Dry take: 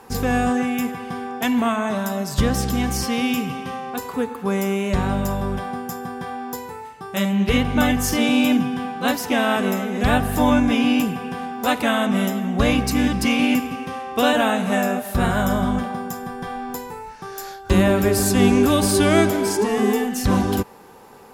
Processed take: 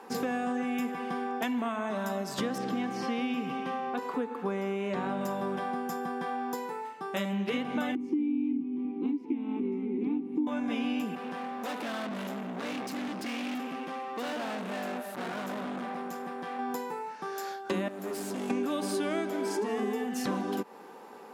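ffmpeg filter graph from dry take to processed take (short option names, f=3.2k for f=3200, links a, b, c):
-filter_complex "[0:a]asettb=1/sr,asplit=3[a][b][c];[a]atrim=end=2.584[d];[b]atrim=start=2.58:end=5.21,asetpts=PTS-STARTPTS,afade=t=in:d=0.004:c=qsin,afade=t=out:st=2.626:d=0.004:c=qsin,acrossover=split=4600[e][f];[f]acompressor=threshold=-39dB:ratio=4:attack=1:release=60[g];[e][g]amix=inputs=2:normalize=0,highshelf=f=5.2k:g=-7[h];[c]atrim=start=5.206[i];[d][h]acrossfade=d=0.004:c1=hsin:c2=qsin[j];[j][i]acrossfade=d=0.004:c1=qsin:c2=hsin,asettb=1/sr,asplit=3[k][l][m];[k]atrim=end=7.954[n];[l]atrim=start=7.95:end=10.47,asetpts=PTS-STARTPTS,afade=t=in:d=0.004:c=qsin,afade=t=out:st=2.516:d=0.004:c=qsin,asplit=3[o][p][q];[o]bandpass=f=300:t=q:w=8,volume=0dB[r];[p]bandpass=f=870:t=q:w=8,volume=-6dB[s];[q]bandpass=f=2.24k:t=q:w=8,volume=-9dB[t];[r][s][t]amix=inputs=3:normalize=0,lowshelf=f=520:t=q:w=3:g=10[u];[m]atrim=start=10.466[v];[n][u]acrossfade=d=0.004:c1=hsin:c2=qsin[w];[w][v]acrossfade=d=0.004:c1=qsin:c2=hsin,asettb=1/sr,asplit=3[x][y][z];[x]atrim=end=11.154[aa];[y]atrim=start=11.15:end=16.59,asetpts=PTS-STARTPTS,afade=t=in:d=0.004:c=qsin,afade=t=out:st=5.436:d=0.004:c=qsin,aeval=exprs='(tanh(31.6*val(0)+0.55)-tanh(0.55))/31.6':c=same,acrusher=bits=9:mode=log:mix=0:aa=0.000001[ab];[z]atrim=start=16.586[ac];[aa][ab]acrossfade=d=0.004:c1=hsin:c2=qsin[ad];[ad][ac]acrossfade=d=0.004:c1=qsin:c2=hsin,asettb=1/sr,asplit=3[ae][af][ag];[ae]atrim=end=17.884[ah];[af]atrim=start=17.88:end=18.5,asetpts=PTS-STARTPTS,afade=t=in:d=0.004:c=qsin,afade=t=out:st=0.616:d=0.004:c=qsin,acrossover=split=850|5800[ai][aj][ak];[ai]acompressor=threshold=-25dB:ratio=4[al];[aj]acompressor=threshold=-42dB:ratio=4[am];[ak]acompressor=threshold=-30dB:ratio=4[an];[al][am][an]amix=inputs=3:normalize=0,volume=28dB,asoftclip=hard,volume=-28dB[ao];[ag]atrim=start=18.496[ap];[ah][ao]acrossfade=d=0.004:c1=hsin:c2=qsin[aq];[aq][ap]acrossfade=d=0.004:c1=qsin:c2=hsin,highpass=f=210:w=0.5412,highpass=f=210:w=1.3066,aemphasis=mode=reproduction:type=cd,acompressor=threshold=-26dB:ratio=6,volume=-2.5dB"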